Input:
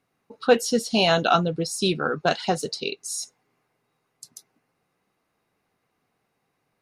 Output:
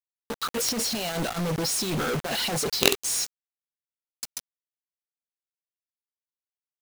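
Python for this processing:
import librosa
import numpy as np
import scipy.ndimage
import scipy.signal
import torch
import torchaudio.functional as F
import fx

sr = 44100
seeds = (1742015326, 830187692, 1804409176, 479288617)

y = fx.high_shelf(x, sr, hz=9400.0, db=-3.0)
y = fx.over_compress(y, sr, threshold_db=-27.0, ratio=-0.5)
y = fx.quant_companded(y, sr, bits=2)
y = y * librosa.db_to_amplitude(-1.0)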